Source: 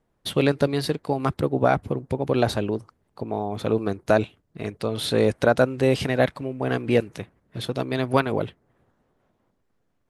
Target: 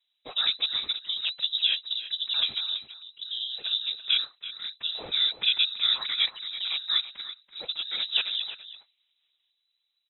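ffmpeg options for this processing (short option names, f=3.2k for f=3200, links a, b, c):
-filter_complex "[0:a]afftfilt=real='hypot(re,im)*cos(2*PI*random(0))':imag='hypot(re,im)*sin(2*PI*random(1))':win_size=512:overlap=0.75,lowpass=f=3.4k:t=q:w=0.5098,lowpass=f=3.4k:t=q:w=0.6013,lowpass=f=3.4k:t=q:w=0.9,lowpass=f=3.4k:t=q:w=2.563,afreqshift=-4000,asplit=2[a][b];[b]adelay=332.4,volume=-11dB,highshelf=f=4k:g=-7.48[c];[a][c]amix=inputs=2:normalize=0"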